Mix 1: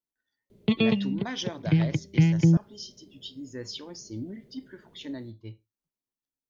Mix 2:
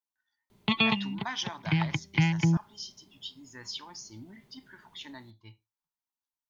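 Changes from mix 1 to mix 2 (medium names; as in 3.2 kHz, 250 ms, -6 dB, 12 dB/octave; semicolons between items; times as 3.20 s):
background +5.0 dB; master: add resonant low shelf 680 Hz -9.5 dB, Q 3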